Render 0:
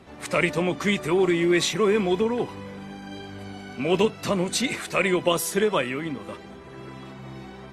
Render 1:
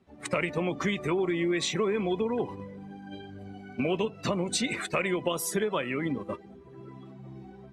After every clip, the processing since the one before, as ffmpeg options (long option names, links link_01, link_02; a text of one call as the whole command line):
ffmpeg -i in.wav -af "afftdn=noise_reduction=15:noise_floor=-36,agate=range=-8dB:threshold=-36dB:ratio=16:detection=peak,acompressor=threshold=-30dB:ratio=5,volume=4dB" out.wav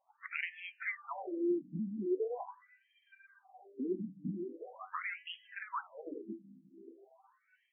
ffmpeg -i in.wav -af "tremolo=f=3.3:d=0.32,flanger=delay=9:depth=2:regen=85:speed=1.1:shape=sinusoidal,afftfilt=real='re*between(b*sr/1024,220*pow(2400/220,0.5+0.5*sin(2*PI*0.42*pts/sr))/1.41,220*pow(2400/220,0.5+0.5*sin(2*PI*0.42*pts/sr))*1.41)':imag='im*between(b*sr/1024,220*pow(2400/220,0.5+0.5*sin(2*PI*0.42*pts/sr))/1.41,220*pow(2400/220,0.5+0.5*sin(2*PI*0.42*pts/sr))*1.41)':win_size=1024:overlap=0.75,volume=2dB" out.wav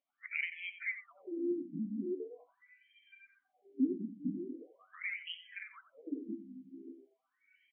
ffmpeg -i in.wav -filter_complex "[0:a]asplit=2[link_01][link_02];[link_02]acompressor=threshold=-46dB:ratio=6,volume=-1.5dB[link_03];[link_01][link_03]amix=inputs=2:normalize=0,asplit=3[link_04][link_05][link_06];[link_04]bandpass=frequency=270:width_type=q:width=8,volume=0dB[link_07];[link_05]bandpass=frequency=2290:width_type=q:width=8,volume=-6dB[link_08];[link_06]bandpass=frequency=3010:width_type=q:width=8,volume=-9dB[link_09];[link_07][link_08][link_09]amix=inputs=3:normalize=0,aecho=1:1:90:0.237,volume=9dB" out.wav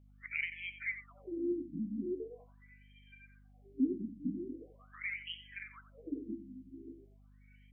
ffmpeg -i in.wav -af "aeval=exprs='val(0)+0.001*(sin(2*PI*50*n/s)+sin(2*PI*2*50*n/s)/2+sin(2*PI*3*50*n/s)/3+sin(2*PI*4*50*n/s)/4+sin(2*PI*5*50*n/s)/5)':channel_layout=same" out.wav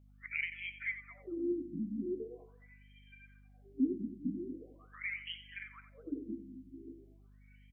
ffmpeg -i in.wav -af "aecho=1:1:219:0.126" out.wav